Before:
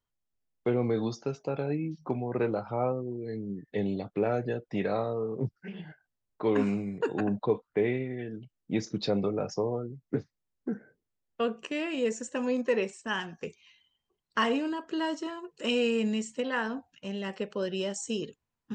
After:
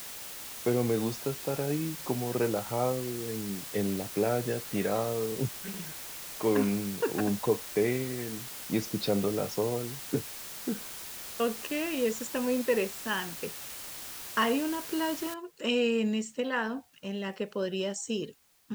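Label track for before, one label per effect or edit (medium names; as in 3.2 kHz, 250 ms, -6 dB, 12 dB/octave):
15.340000	15.340000	noise floor step -42 dB -66 dB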